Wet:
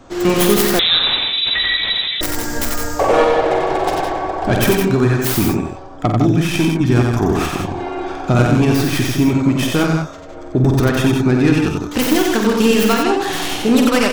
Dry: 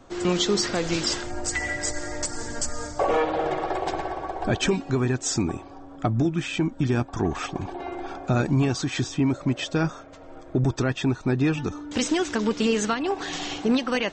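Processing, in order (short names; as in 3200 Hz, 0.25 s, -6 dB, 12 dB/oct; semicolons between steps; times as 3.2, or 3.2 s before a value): tracing distortion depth 0.35 ms; on a send: tapped delay 48/91/159/185 ms -7/-3.5/-6.5/-10 dB; 0.79–2.21 on the sum: inverted band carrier 3900 Hz; gain +7 dB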